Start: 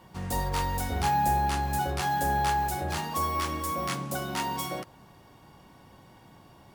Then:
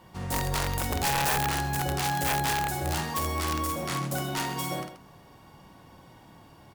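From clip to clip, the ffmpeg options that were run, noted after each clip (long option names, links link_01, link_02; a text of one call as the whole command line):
ffmpeg -i in.wav -af "aecho=1:1:51|131:0.596|0.282,aeval=exprs='(mod(10*val(0)+1,2)-1)/10':channel_layout=same" out.wav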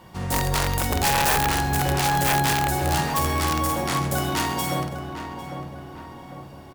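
ffmpeg -i in.wav -filter_complex "[0:a]asplit=2[link_01][link_02];[link_02]adelay=801,lowpass=frequency=1800:poles=1,volume=-8dB,asplit=2[link_03][link_04];[link_04]adelay=801,lowpass=frequency=1800:poles=1,volume=0.51,asplit=2[link_05][link_06];[link_06]adelay=801,lowpass=frequency=1800:poles=1,volume=0.51,asplit=2[link_07][link_08];[link_08]adelay=801,lowpass=frequency=1800:poles=1,volume=0.51,asplit=2[link_09][link_10];[link_10]adelay=801,lowpass=frequency=1800:poles=1,volume=0.51,asplit=2[link_11][link_12];[link_12]adelay=801,lowpass=frequency=1800:poles=1,volume=0.51[link_13];[link_01][link_03][link_05][link_07][link_09][link_11][link_13]amix=inputs=7:normalize=0,volume=5.5dB" out.wav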